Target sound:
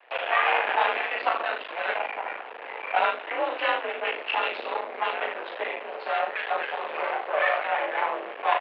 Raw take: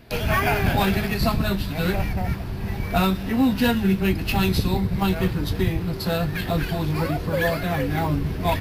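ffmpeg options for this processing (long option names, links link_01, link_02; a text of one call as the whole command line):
ffmpeg -i in.wav -af "aecho=1:1:39|75:0.562|0.376,aeval=exprs='max(val(0),0)':channel_layout=same,highpass=frequency=490:width_type=q:width=0.5412,highpass=frequency=490:width_type=q:width=1.307,lowpass=frequency=2900:width_type=q:width=0.5176,lowpass=frequency=2900:width_type=q:width=0.7071,lowpass=frequency=2900:width_type=q:width=1.932,afreqshift=56,volume=4dB" out.wav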